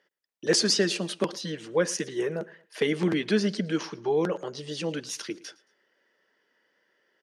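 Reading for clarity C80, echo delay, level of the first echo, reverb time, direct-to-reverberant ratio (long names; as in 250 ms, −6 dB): no reverb audible, 112 ms, −22.0 dB, no reverb audible, no reverb audible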